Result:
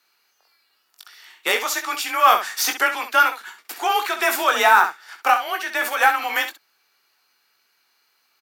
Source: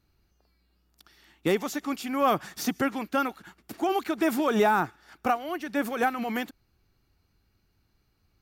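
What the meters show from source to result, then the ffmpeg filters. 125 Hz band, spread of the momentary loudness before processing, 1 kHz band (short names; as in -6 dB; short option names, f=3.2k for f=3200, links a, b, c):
under -20 dB, 9 LU, +10.0 dB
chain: -af "highpass=1k,acontrast=72,afreqshift=31,aeval=exprs='0.335*(cos(1*acos(clip(val(0)/0.335,-1,1)))-cos(1*PI/2))+0.00376*(cos(7*acos(clip(val(0)/0.335,-1,1)))-cos(7*PI/2))':c=same,aecho=1:1:21|66:0.447|0.335,volume=6dB"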